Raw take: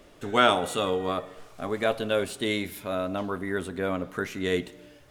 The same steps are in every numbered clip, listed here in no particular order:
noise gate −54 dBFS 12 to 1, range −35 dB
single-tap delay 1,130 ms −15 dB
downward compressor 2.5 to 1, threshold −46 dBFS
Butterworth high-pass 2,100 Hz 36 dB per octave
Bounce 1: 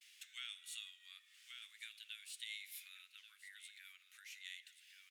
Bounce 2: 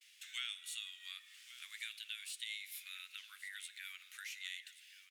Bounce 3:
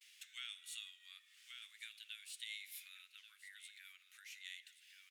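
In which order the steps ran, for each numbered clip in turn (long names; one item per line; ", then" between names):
single-tap delay, then noise gate, then downward compressor, then Butterworth high-pass
noise gate, then Butterworth high-pass, then downward compressor, then single-tap delay
single-tap delay, then downward compressor, then noise gate, then Butterworth high-pass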